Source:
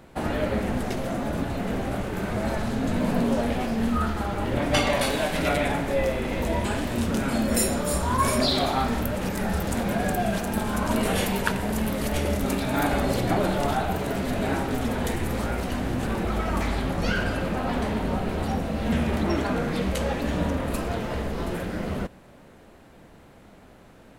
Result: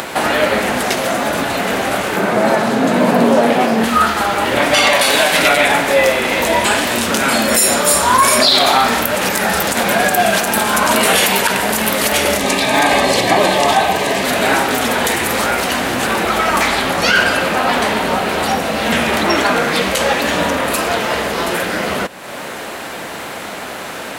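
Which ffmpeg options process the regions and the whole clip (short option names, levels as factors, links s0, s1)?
-filter_complex "[0:a]asettb=1/sr,asplit=3[s0][s1][s2];[s0]atrim=end=2.164[s3];[s1]atrim=start=2.16:end=3.84,asetpts=PTS-STARTPTS,afade=t=in:d=0.004:c=qsin,afade=t=out:st=1.676:d=0.004:c=qsin,highpass=f=130:w=0.5412,highpass=f=130:w=1.3066,tiltshelf=f=1300:g=6[s4];[s2]atrim=start=3.836[s5];[s3][s4]acrossfade=d=0.004:c1=hsin:c2=qsin[s6];[s6][s5]acrossfade=d=0.004:c1=qsin:c2=hsin,asettb=1/sr,asplit=3[s7][s8][s9];[s7]atrim=end=12.384[s10];[s8]atrim=start=12.38:end=14.24,asetpts=PTS-STARTPTS,afade=t=in:d=0.004:c=qsin,afade=t=out:st=1.856:d=0.004:c=qsin,acrossover=split=9600[s11][s12];[s12]acompressor=threshold=0.00178:ratio=4:attack=1:release=60[s13];[s11][s13]amix=inputs=2:normalize=0,asuperstop=centerf=1400:order=8:qfactor=5.7[s14];[s9]atrim=start=14.236[s15];[s10][s14]acrossfade=d=0.004:c1=hsin:c2=qsin[s16];[s16][s15]acrossfade=d=0.004:c1=qsin:c2=hsin,highpass=f=1200:p=1,acompressor=mode=upward:threshold=0.02:ratio=2.5,alimiter=level_in=10.6:limit=0.891:release=50:level=0:latency=1,volume=0.891"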